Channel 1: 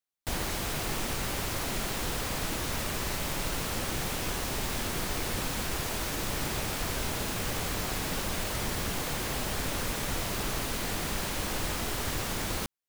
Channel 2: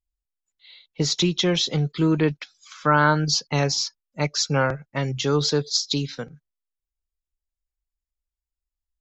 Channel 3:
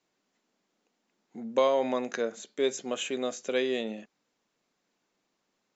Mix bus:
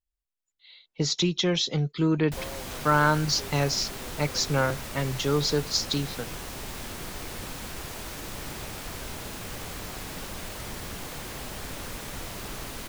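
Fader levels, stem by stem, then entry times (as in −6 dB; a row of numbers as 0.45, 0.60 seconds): −5.0, −3.5, −17.0 decibels; 2.05, 0.00, 0.80 seconds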